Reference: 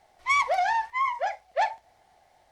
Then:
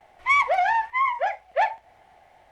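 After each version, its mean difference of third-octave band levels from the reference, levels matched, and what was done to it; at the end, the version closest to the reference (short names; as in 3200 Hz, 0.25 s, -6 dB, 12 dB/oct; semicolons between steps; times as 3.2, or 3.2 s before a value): 2.0 dB: gate with hold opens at -58 dBFS; resonant high shelf 3500 Hz -7 dB, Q 1.5; in parallel at -3 dB: compressor, threshold -36 dBFS, peak gain reduction 16.5 dB; on the sum: gain +1.5 dB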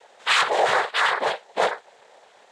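9.5 dB: bell 2200 Hz +2.5 dB 2.2 oct; overdrive pedal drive 18 dB, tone 5900 Hz, clips at -12 dBFS; noise vocoder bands 6; gain -1.5 dB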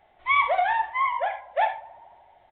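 4.5 dB: tape echo 79 ms, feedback 88%, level -18.5 dB, low-pass 1700 Hz; non-linear reverb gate 0.11 s flat, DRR 6.5 dB; downsampling 8000 Hz; gain +1 dB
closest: first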